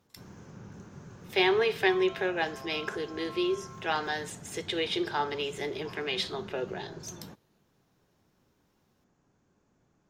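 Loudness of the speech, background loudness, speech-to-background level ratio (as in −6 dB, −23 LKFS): −30.5 LKFS, −46.5 LKFS, 16.0 dB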